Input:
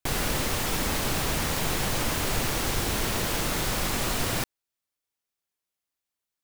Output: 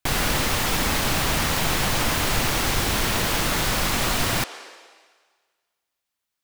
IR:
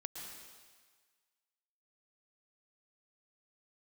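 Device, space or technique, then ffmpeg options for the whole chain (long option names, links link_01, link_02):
filtered reverb send: -filter_complex "[0:a]asplit=2[link_01][link_02];[link_02]highpass=frequency=400:width=0.5412,highpass=frequency=400:width=1.3066,lowpass=6200[link_03];[1:a]atrim=start_sample=2205[link_04];[link_03][link_04]afir=irnorm=-1:irlink=0,volume=-5.5dB[link_05];[link_01][link_05]amix=inputs=2:normalize=0,volume=4dB"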